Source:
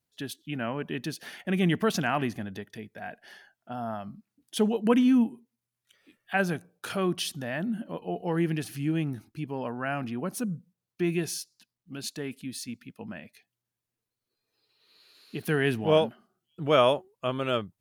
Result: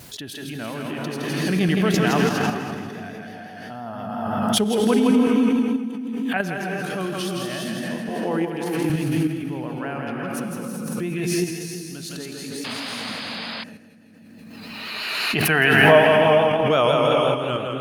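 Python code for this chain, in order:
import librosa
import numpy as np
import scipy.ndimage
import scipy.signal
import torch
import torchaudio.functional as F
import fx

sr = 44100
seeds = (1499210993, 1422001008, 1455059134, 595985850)

p1 = fx.spec_box(x, sr, start_s=14.43, length_s=1.66, low_hz=560.0, high_hz=3100.0, gain_db=10)
p2 = p1 + fx.echo_split(p1, sr, split_hz=330.0, low_ms=244, high_ms=164, feedback_pct=52, wet_db=-4.0, dry=0)
p3 = fx.rev_gated(p2, sr, seeds[0], gate_ms=430, shape='rising', drr_db=1.5)
p4 = fx.vibrato(p3, sr, rate_hz=5.8, depth_cents=42.0)
p5 = fx.level_steps(p4, sr, step_db=23)
p6 = p4 + (p5 * 10.0 ** (-0.5 / 20.0))
p7 = fx.highpass(p6, sr, hz=230.0, slope=12, at=(8.09, 8.9))
p8 = fx.spec_paint(p7, sr, seeds[1], shape='noise', start_s=12.64, length_s=1.0, low_hz=490.0, high_hz=5100.0, level_db=-30.0)
p9 = fx.pre_swell(p8, sr, db_per_s=23.0)
y = p9 * 10.0 ** (-2.5 / 20.0)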